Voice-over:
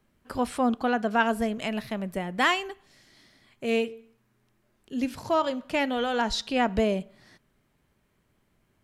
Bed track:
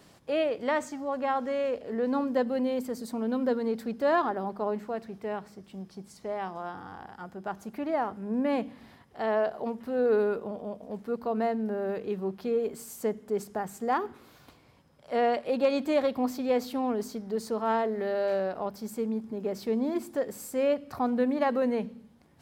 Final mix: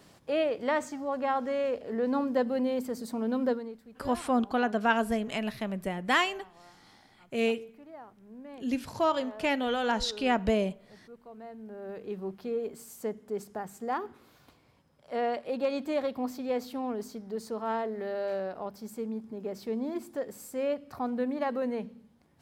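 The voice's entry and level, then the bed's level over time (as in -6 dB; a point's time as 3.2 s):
3.70 s, -2.0 dB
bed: 3.5 s -0.5 dB
3.8 s -18.5 dB
11.39 s -18.5 dB
12.13 s -4.5 dB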